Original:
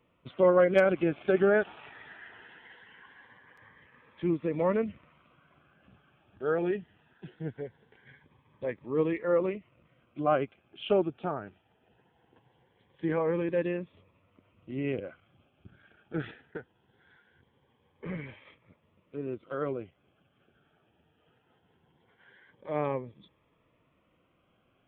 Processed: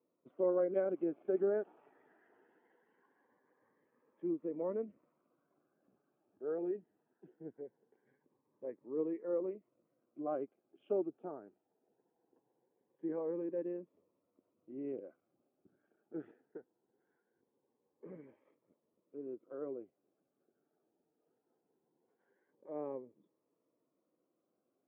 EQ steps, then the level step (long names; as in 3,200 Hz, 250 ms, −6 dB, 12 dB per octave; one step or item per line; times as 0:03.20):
four-pole ladder band-pass 410 Hz, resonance 30%
+1.0 dB